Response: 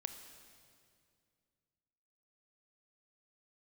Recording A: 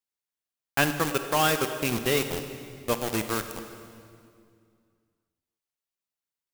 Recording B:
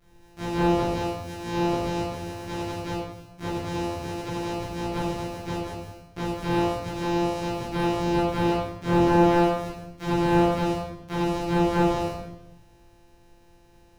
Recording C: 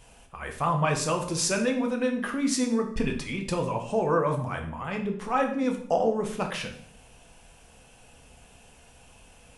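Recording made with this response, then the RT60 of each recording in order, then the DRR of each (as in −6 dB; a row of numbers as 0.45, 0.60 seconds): A; 2.3, 0.95, 0.60 seconds; 7.5, −11.0, 3.0 decibels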